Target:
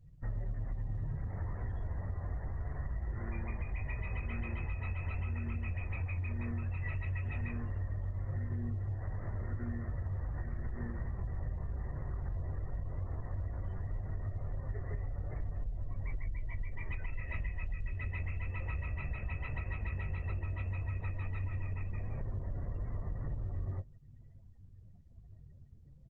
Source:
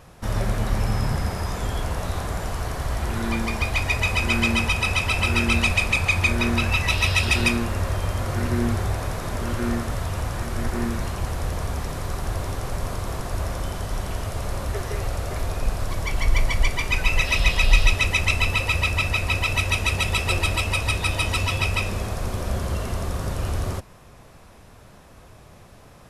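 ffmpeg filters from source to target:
ffmpeg -i in.wav -filter_complex "[0:a]acrusher=bits=7:mix=0:aa=0.000001,flanger=delay=6.8:depth=9.2:regen=-45:speed=0.13:shape=sinusoidal,firequalizer=gain_entry='entry(120,0);entry(190,-8);entry(5500,-21)':delay=0.05:min_phase=1,acrossover=split=3000[link_01][link_02];[link_02]acompressor=threshold=-60dB:ratio=4:attack=1:release=60[link_03];[link_01][link_03]amix=inputs=2:normalize=0,asplit=2[link_04][link_05];[link_05]adelay=21,volume=-7.5dB[link_06];[link_04][link_06]amix=inputs=2:normalize=0,asettb=1/sr,asplit=3[link_07][link_08][link_09];[link_07]atrim=end=20.794[link_10];[link_08]atrim=start=20.79:end=23.4,asetpts=PTS-STARTPTS,afade=type=in:duration=0.004:curve=qsin,afade=type=out:start_time=2.606:duration=0.004:curve=qsin,asplit=5[link_11][link_12][link_13][link_14][link_15];[link_12]adelay=171,afreqshift=-77,volume=-4dB[link_16];[link_13]adelay=342,afreqshift=-154,volume=-13.4dB[link_17];[link_14]adelay=513,afreqshift=-231,volume=-22.7dB[link_18];[link_15]adelay=684,afreqshift=-308,volume=-32.1dB[link_19];[link_11][link_16][link_17][link_18][link_19]amix=inputs=5:normalize=0,atrim=end_sample=115101[link_20];[link_09]atrim=start=23.396[link_21];[link_10][link_20]acrossfade=duration=0.004:curve1=hsin:curve2=qsin[link_22];[link_22][link_21]acrossfade=duration=0.004:curve1=qsin:curve2=hsin,asoftclip=type=tanh:threshold=-17.5dB,acompressor=threshold=-31dB:ratio=20,equalizer=frequency=1900:width=6.1:gain=11.5,afftdn=noise_reduction=35:noise_floor=-50,volume=-1.5dB" -ar 48000 -c:a libopus -b:a 16k out.opus

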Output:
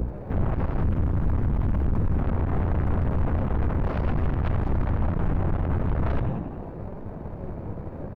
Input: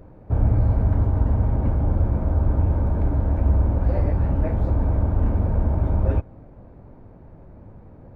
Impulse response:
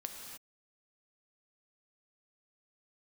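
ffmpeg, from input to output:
-filter_complex "[0:a]flanger=delay=4.6:depth=1.7:regen=65:speed=0.84:shape=sinusoidal,acrossover=split=150|440[link_01][link_02][link_03];[link_02]alimiter=level_in=13.5dB:limit=-24dB:level=0:latency=1,volume=-13.5dB[link_04];[link_01][link_04][link_03]amix=inputs=3:normalize=0,lowshelf=frequency=84:gain=-7,asplit=7[link_05][link_06][link_07][link_08][link_09][link_10][link_11];[link_06]adelay=91,afreqshift=58,volume=-7dB[link_12];[link_07]adelay=182,afreqshift=116,volume=-13.2dB[link_13];[link_08]adelay=273,afreqshift=174,volume=-19.4dB[link_14];[link_09]adelay=364,afreqshift=232,volume=-25.6dB[link_15];[link_10]adelay=455,afreqshift=290,volume=-31.8dB[link_16];[link_11]adelay=546,afreqshift=348,volume=-38dB[link_17];[link_05][link_12][link_13][link_14][link_15][link_16][link_17]amix=inputs=7:normalize=0,aeval=exprs='val(0)+0.0141*(sin(2*PI*60*n/s)+sin(2*PI*2*60*n/s)/2+sin(2*PI*3*60*n/s)/3+sin(2*PI*4*60*n/s)/4+sin(2*PI*5*60*n/s)/5)':channel_layout=same,asettb=1/sr,asplit=3[link_18][link_19][link_20];[link_18]atrim=end=0.834[link_21];[link_19]atrim=start=0.83:end=2.19,asetpts=PTS-STARTPTS,afade=type=in:duration=0.004:curve=qsin,afade=type=out:start_time=1.356:duration=0.004:curve=qsin,equalizer=frequency=380:width_type=o:width=2:gain=-14[link_22];[link_20]atrim=start=2.186[link_23];[link_21][link_22]acrossfade=duration=0.004:curve1=hsin:curve2=qsin[link_24];[link_24][link_23]acrossfade=duration=0.004:curve1=qsin:curve2=hsin,asplit=2[link_25][link_26];[link_26]aeval=exprs='0.266*sin(PI/2*8.91*val(0)/0.266)':channel_layout=same,volume=-5dB[link_27];[link_25][link_27]amix=inputs=2:normalize=0,acrossover=split=140[link_28][link_29];[link_29]acompressor=threshold=-31dB:ratio=5[link_30];[link_28][link_30]amix=inputs=2:normalize=0,bandreject=frequency=60:width_type=h:width=6,bandreject=frequency=120:width_type=h:width=6,bandreject=frequency=180:width_type=h:width=6,bandreject=frequency=240:width_type=h:width=6,bandreject=frequency=300:width_type=h:width=6,aeval=exprs='(tanh(17.8*val(0)+0.6)-tanh(0.6))/17.8':channel_layout=same,volume=4.5dB"

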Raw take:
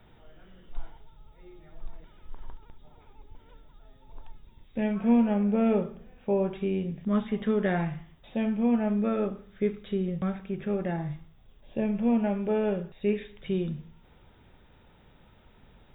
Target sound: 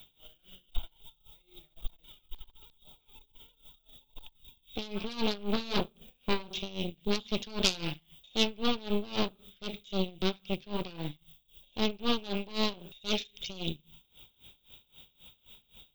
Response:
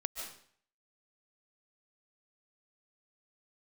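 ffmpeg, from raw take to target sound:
-af "aeval=exprs='0.251*(cos(1*acos(clip(val(0)/0.251,-1,1)))-cos(1*PI/2))+0.0251*(cos(5*acos(clip(val(0)/0.251,-1,1)))-cos(5*PI/2))+0.1*(cos(8*acos(clip(val(0)/0.251,-1,1)))-cos(8*PI/2))':channel_layout=same,aexciter=amount=10:drive=9.1:freq=2900,aeval=exprs='val(0)*pow(10,-21*(0.5-0.5*cos(2*PI*3.8*n/s))/20)':channel_layout=same,volume=-7.5dB"

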